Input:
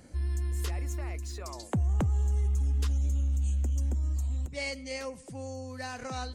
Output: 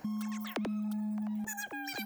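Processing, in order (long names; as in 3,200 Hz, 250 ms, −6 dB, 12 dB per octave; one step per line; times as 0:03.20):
change of speed 3.09×
downward compressor, threshold −34 dBFS, peak gain reduction 9 dB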